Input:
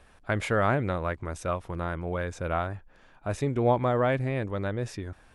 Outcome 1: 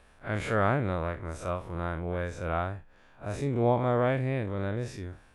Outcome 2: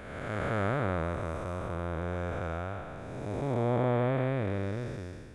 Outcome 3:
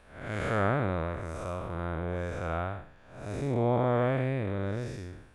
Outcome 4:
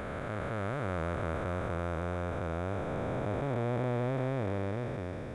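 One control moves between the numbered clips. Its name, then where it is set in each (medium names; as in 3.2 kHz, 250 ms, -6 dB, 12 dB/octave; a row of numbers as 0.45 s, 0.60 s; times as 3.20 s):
spectral blur, width: 90 ms, 603 ms, 240 ms, 1790 ms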